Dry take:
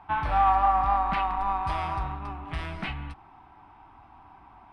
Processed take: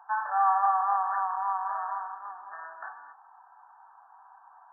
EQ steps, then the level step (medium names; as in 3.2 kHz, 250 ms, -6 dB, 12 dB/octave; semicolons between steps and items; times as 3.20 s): high-pass 790 Hz 24 dB/octave; brick-wall FIR low-pass 1.8 kHz; 0.0 dB